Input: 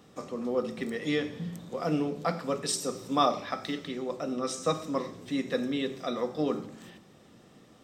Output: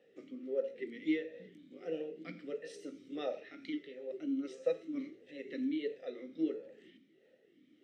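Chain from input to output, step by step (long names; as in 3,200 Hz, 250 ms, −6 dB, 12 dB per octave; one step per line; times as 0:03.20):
pitch shifter swept by a sawtooth +1.5 semitones, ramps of 745 ms
formant filter swept between two vowels e-i 1.5 Hz
level +1.5 dB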